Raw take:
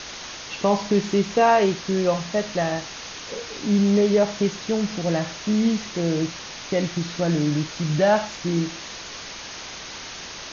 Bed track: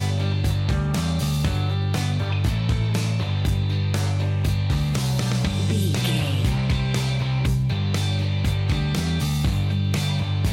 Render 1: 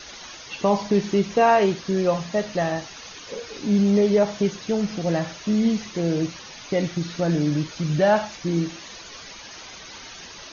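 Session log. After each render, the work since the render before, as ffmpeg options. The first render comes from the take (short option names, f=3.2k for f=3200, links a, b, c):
-af "afftdn=nr=10:nf=-37"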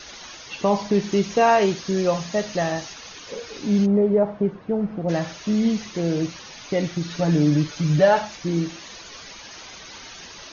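-filter_complex "[0:a]asettb=1/sr,asplit=3[a][b][c];[a]atrim=end=1.124[d];[b]atrim=start=1.12:end=2.94,asetpts=PTS-STARTPTS,afade=t=in:d=0.004:c=qsin,afade=t=out:st=1.816:d=0.004:c=qsin,highshelf=f=5.5k:g=8[e];[c]atrim=start=2.936[f];[d][e]acrossfade=d=0.004:c1=hsin:c2=qsin[g];[g][f]acrossfade=d=0.004:c1=qsin:c2=hsin,asplit=3[h][i][j];[h]afade=t=out:st=3.85:d=0.02[k];[i]lowpass=1.1k,afade=t=in:st=3.85:d=0.02,afade=t=out:st=5.08:d=0.02[l];[j]afade=t=in:st=5.08:d=0.02[m];[k][l][m]amix=inputs=3:normalize=0,asettb=1/sr,asplit=3[n][o][p];[n]atrim=end=7.104[q];[o]atrim=start=7.1:end=8.21,asetpts=PTS-STARTPTS,afade=t=in:d=0.004:c=qsin,afade=t=out:st=1.106:d=0.004:c=qsin,aecho=1:1:6.9:0.65,atrim=end_sample=48951[r];[p]atrim=start=8.206[s];[q][r]acrossfade=d=0.004:c1=hsin:c2=qsin[t];[t][s]acrossfade=d=0.004:c1=qsin:c2=hsin"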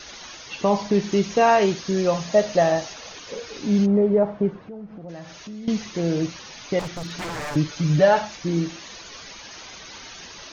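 -filter_complex "[0:a]asettb=1/sr,asplit=3[a][b][c];[a]atrim=end=2.274[d];[b]atrim=start=2.27:end=3.2,asetpts=PTS-STARTPTS,afade=t=in:d=0.004:c=qsin,afade=t=out:st=0.926:d=0.004:c=qsin,equalizer=f=600:t=o:w=0.77:g=8[e];[c]atrim=start=3.196[f];[d][e]acrossfade=d=0.004:c1=hsin:c2=qsin[g];[g][f]acrossfade=d=0.004:c1=qsin:c2=hsin,asettb=1/sr,asplit=3[h][i][j];[h]atrim=end=4.584[k];[i]atrim=start=4.58:end=5.68,asetpts=PTS-STARTPTS,afade=t=in:d=0.004:c=qsin,afade=t=out:st=1.096:d=0.004:c=qsin,acompressor=threshold=-39dB:ratio=3:attack=3.2:release=140:knee=1:detection=peak[l];[j]atrim=start=5.676[m];[k][l]acrossfade=d=0.004:c1=hsin:c2=qsin[n];[n][m]acrossfade=d=0.004:c1=qsin:c2=hsin,asettb=1/sr,asplit=3[o][p][q];[o]atrim=end=6.794[r];[p]atrim=start=6.79:end=7.56,asetpts=PTS-STARTPTS,afade=t=in:d=0.004:c=qsin,afade=t=out:st=0.766:d=0.004:c=qsin,aeval=exprs='0.0531*(abs(mod(val(0)/0.0531+3,4)-2)-1)':c=same[s];[q]atrim=start=7.556[t];[r][s]acrossfade=d=0.004:c1=hsin:c2=qsin[u];[u][t]acrossfade=d=0.004:c1=qsin:c2=hsin"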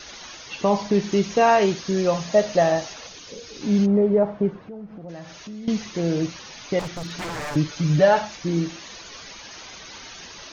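-filter_complex "[0:a]asettb=1/sr,asplit=3[a][b][c];[a]atrim=end=3.074[d];[b]atrim=start=3.07:end=3.61,asetpts=PTS-STARTPTS,afade=t=in:d=0.004:c=qsin,afade=t=out:st=0.536:d=0.004:c=qsin,acrossover=split=380|3000[e][f][g];[f]acompressor=threshold=-50dB:ratio=2.5:attack=3.2:release=140:knee=2.83:detection=peak[h];[e][h][g]amix=inputs=3:normalize=0[i];[c]atrim=start=3.606[j];[d][i]acrossfade=d=0.004:c1=hsin:c2=qsin[k];[k][j]acrossfade=d=0.004:c1=qsin:c2=hsin"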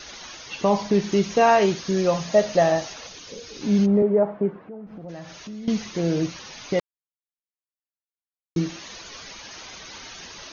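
-filter_complex "[0:a]asettb=1/sr,asplit=3[a][b][c];[a]atrim=end=4.024[d];[b]atrim=start=4.02:end=4.87,asetpts=PTS-STARTPTS,afade=t=in:d=0.004:c=qsin,afade=t=out:st=0.846:d=0.004:c=qsin,acrossover=split=170 2700:gain=0.224 1 0.0631[e][f][g];[e][f][g]amix=inputs=3:normalize=0[h];[c]atrim=start=4.866[i];[d][h]acrossfade=d=0.004:c1=hsin:c2=qsin[j];[j][i]acrossfade=d=0.004:c1=qsin:c2=hsin,asplit=3[k][l][m];[k]atrim=end=6.8,asetpts=PTS-STARTPTS,afade=t=out:st=6.796:d=0.004:c=hsin[n];[l]atrim=start=6.8:end=8.56,asetpts=PTS-STARTPTS,volume=0[o];[m]atrim=start=8.56,asetpts=PTS-STARTPTS,afade=t=in:d=0.004:c=hsin[p];[n][o][p]concat=n=3:v=0:a=1"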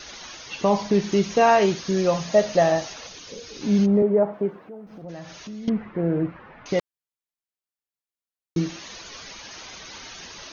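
-filter_complex "[0:a]asettb=1/sr,asplit=3[a][b][c];[a]atrim=end=4.334[d];[b]atrim=start=4.33:end=5.02,asetpts=PTS-STARTPTS,afade=t=in:d=0.004:c=qsin,afade=t=out:st=0.686:d=0.004:c=qsin,bass=f=250:g=-5,treble=f=4k:g=11[e];[c]atrim=start=5.016[f];[d][e]acrossfade=d=0.004:c1=hsin:c2=qsin[g];[g][f]acrossfade=d=0.004:c1=qsin:c2=hsin,asettb=1/sr,asplit=3[h][i][j];[h]atrim=end=5.694[k];[i]atrim=start=5.69:end=6.66,asetpts=PTS-STARTPTS,afade=t=in:d=0.004:c=qsin,afade=t=out:st=0.966:d=0.004:c=qsin,lowpass=f=1.8k:w=0.5412,lowpass=f=1.8k:w=1.3066[l];[j]atrim=start=6.656[m];[k][l]acrossfade=d=0.004:c1=hsin:c2=qsin[n];[n][m]acrossfade=d=0.004:c1=qsin:c2=hsin"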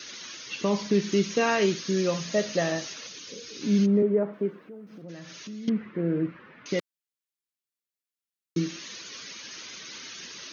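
-af "highpass=180,equalizer=f=770:t=o:w=0.95:g=-14"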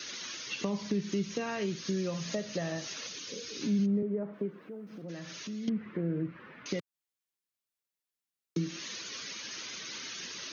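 -filter_complex "[0:a]acrossover=split=160[a][b];[b]acompressor=threshold=-33dB:ratio=6[c];[a][c]amix=inputs=2:normalize=0"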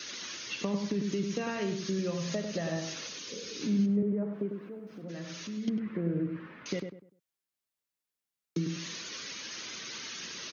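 -filter_complex "[0:a]asplit=2[a][b];[b]adelay=99,lowpass=f=1.5k:p=1,volume=-5.5dB,asplit=2[c][d];[d]adelay=99,lowpass=f=1.5k:p=1,volume=0.32,asplit=2[e][f];[f]adelay=99,lowpass=f=1.5k:p=1,volume=0.32,asplit=2[g][h];[h]adelay=99,lowpass=f=1.5k:p=1,volume=0.32[i];[a][c][e][g][i]amix=inputs=5:normalize=0"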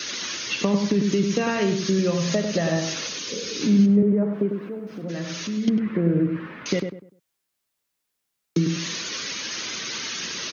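-af "volume=10.5dB"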